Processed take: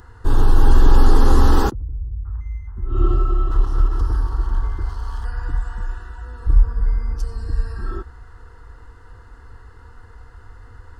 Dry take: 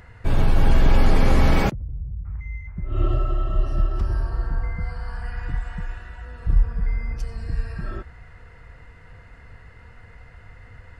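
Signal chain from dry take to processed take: 3.51–5.25 minimum comb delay 0.95 ms; fixed phaser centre 610 Hz, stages 6; gain +5.5 dB

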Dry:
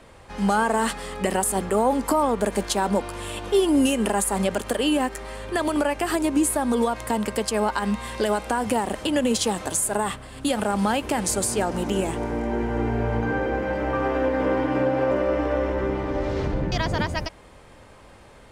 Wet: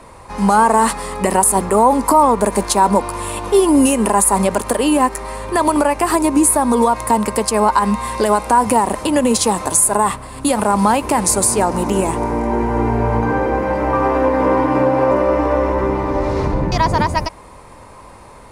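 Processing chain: thirty-one-band EQ 1000 Hz +10 dB, 1600 Hz -4 dB, 3150 Hz -8 dB, 10000 Hz +7 dB; maximiser +8 dB; gain -1 dB

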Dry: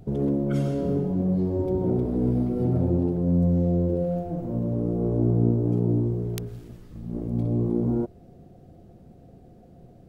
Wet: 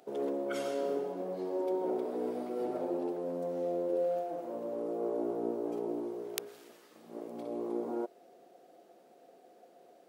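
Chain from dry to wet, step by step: Bessel high-pass 600 Hz, order 4; gain +2 dB

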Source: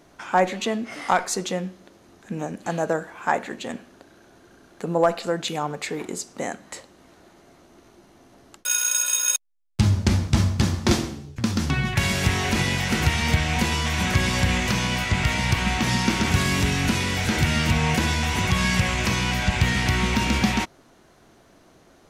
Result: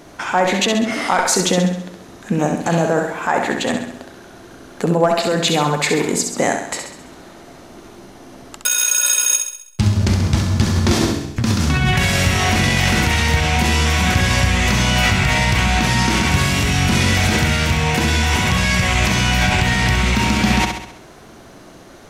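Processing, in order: in parallel at +1.5 dB: negative-ratio compressor -27 dBFS, ratio -0.5; on the sum: flutter echo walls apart 11.4 m, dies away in 0.69 s; gain +1.5 dB

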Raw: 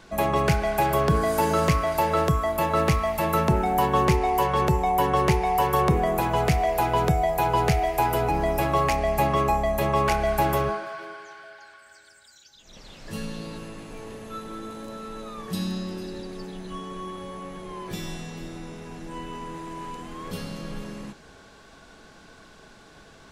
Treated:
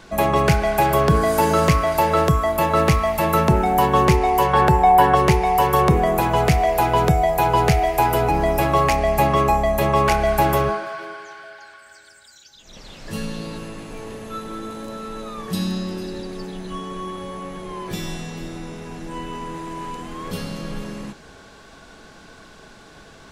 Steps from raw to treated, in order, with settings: 4.53–5.15 thirty-one-band EQ 800 Hz +9 dB, 1600 Hz +9 dB, 6300 Hz -7 dB, 12500 Hz -4 dB; gain +5 dB

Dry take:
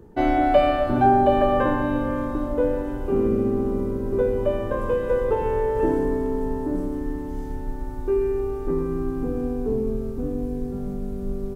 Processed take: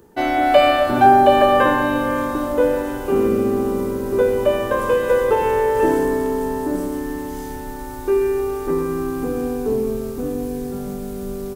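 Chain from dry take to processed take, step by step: tilt +3 dB/oct; AGC gain up to 5.5 dB; gain +3 dB

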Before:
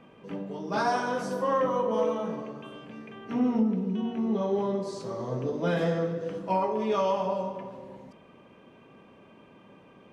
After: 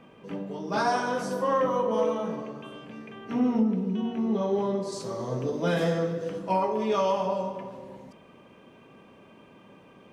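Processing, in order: high shelf 5700 Hz +3.5 dB, from 4.92 s +11.5 dB, from 6.29 s +6.5 dB; gain +1 dB

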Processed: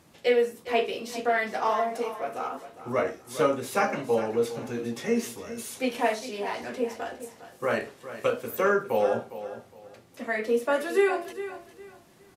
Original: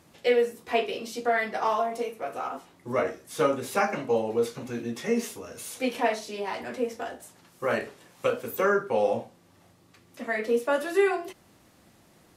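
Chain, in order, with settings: feedback echo 0.408 s, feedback 26%, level -13 dB

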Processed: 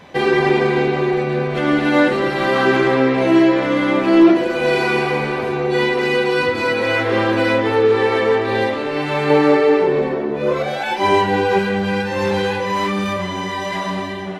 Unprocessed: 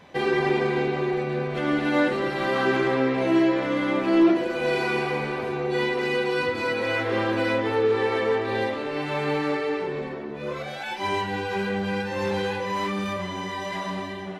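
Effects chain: 9.3–11.59 bell 470 Hz +6.5 dB 2.3 oct; gain +7.5 dB

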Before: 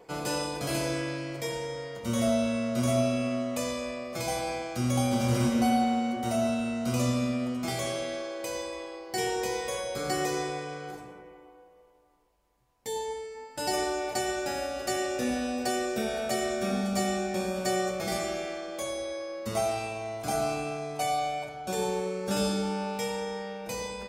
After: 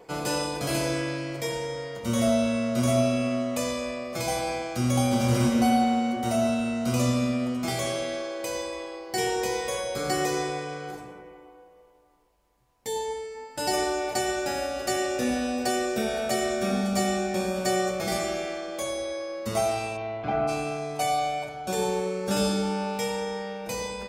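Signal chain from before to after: 19.96–20.47 LPF 4500 Hz -> 2300 Hz 24 dB/oct; gain +3 dB

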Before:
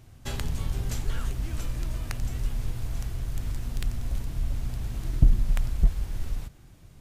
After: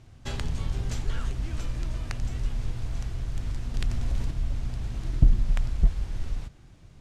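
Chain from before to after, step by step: LPF 6900 Hz 12 dB/oct; 3.74–4.31 fast leveller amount 50%

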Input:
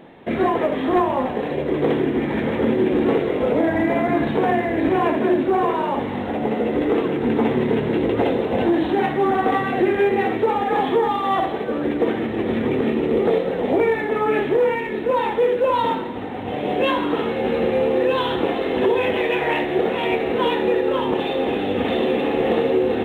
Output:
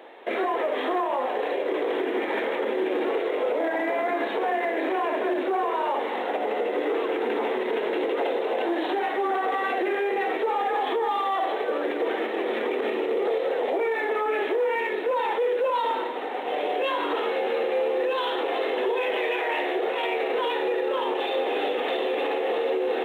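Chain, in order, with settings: HPF 400 Hz 24 dB/oct; limiter -19.5 dBFS, peak gain reduction 10 dB; gain +1.5 dB

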